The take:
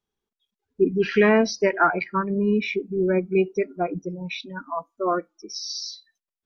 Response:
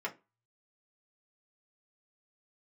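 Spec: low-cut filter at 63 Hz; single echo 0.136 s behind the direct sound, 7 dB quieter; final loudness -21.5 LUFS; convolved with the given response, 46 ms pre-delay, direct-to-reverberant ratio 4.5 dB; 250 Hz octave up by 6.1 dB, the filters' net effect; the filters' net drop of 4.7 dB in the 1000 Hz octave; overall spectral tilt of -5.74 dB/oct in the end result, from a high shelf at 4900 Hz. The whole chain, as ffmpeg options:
-filter_complex "[0:a]highpass=63,equalizer=f=250:t=o:g=9,equalizer=f=1k:t=o:g=-8,highshelf=f=4.9k:g=4.5,aecho=1:1:136:0.447,asplit=2[a][b];[1:a]atrim=start_sample=2205,adelay=46[c];[b][c]afir=irnorm=-1:irlink=0,volume=-8dB[d];[a][d]amix=inputs=2:normalize=0,volume=-3.5dB"

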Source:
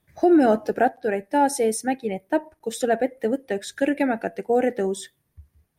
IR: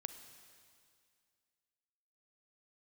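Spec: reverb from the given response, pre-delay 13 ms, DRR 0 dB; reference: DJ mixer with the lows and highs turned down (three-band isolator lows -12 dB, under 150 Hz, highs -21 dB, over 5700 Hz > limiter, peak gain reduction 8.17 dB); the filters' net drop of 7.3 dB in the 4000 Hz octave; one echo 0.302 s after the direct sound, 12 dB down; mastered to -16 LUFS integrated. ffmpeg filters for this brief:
-filter_complex "[0:a]equalizer=f=4k:t=o:g=-7.5,aecho=1:1:302:0.251,asplit=2[a][b];[1:a]atrim=start_sample=2205,adelay=13[c];[b][c]afir=irnorm=-1:irlink=0,volume=3dB[d];[a][d]amix=inputs=2:normalize=0,acrossover=split=150 5700:gain=0.251 1 0.0891[e][f][g];[e][f][g]amix=inputs=3:normalize=0,volume=7dB,alimiter=limit=-4.5dB:level=0:latency=1"

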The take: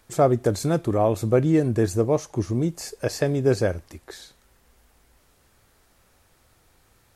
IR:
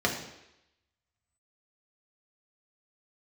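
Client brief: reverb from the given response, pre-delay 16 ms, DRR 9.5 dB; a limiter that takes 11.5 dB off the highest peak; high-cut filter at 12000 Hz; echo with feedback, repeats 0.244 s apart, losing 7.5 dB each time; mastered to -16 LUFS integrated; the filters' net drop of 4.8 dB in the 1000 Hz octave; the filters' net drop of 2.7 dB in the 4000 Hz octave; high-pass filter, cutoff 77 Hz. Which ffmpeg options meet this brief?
-filter_complex "[0:a]highpass=77,lowpass=12k,equalizer=f=1k:t=o:g=-8,equalizer=f=4k:t=o:g=-3,alimiter=limit=-19.5dB:level=0:latency=1,aecho=1:1:244|488|732|976|1220:0.422|0.177|0.0744|0.0312|0.0131,asplit=2[a][b];[1:a]atrim=start_sample=2205,adelay=16[c];[b][c]afir=irnorm=-1:irlink=0,volume=-21dB[d];[a][d]amix=inputs=2:normalize=0,volume=12.5dB"

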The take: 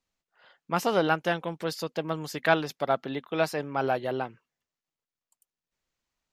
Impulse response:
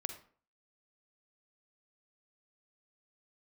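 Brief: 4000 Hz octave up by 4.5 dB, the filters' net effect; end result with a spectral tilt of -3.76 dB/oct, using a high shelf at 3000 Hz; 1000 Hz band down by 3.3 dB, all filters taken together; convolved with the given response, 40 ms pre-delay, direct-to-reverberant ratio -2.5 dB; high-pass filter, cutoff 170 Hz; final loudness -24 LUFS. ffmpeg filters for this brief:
-filter_complex "[0:a]highpass=170,equalizer=f=1k:t=o:g=-5.5,highshelf=f=3k:g=3.5,equalizer=f=4k:t=o:g=3.5,asplit=2[a][b];[1:a]atrim=start_sample=2205,adelay=40[c];[b][c]afir=irnorm=-1:irlink=0,volume=3dB[d];[a][d]amix=inputs=2:normalize=0,volume=1.5dB"

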